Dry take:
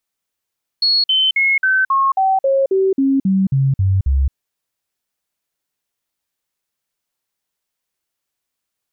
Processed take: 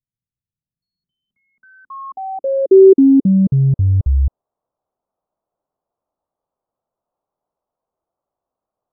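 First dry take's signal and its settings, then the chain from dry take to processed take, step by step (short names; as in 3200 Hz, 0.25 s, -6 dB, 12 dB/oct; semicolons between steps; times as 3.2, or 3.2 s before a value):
stepped sine 4340 Hz down, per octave 2, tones 13, 0.22 s, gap 0.05 s -11.5 dBFS
resonant high shelf 1800 Hz -14 dB, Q 3; in parallel at -9 dB: soft clip -15.5 dBFS; on the sum: low-pass sweep 130 Hz -> 670 Hz, 0.37–4.2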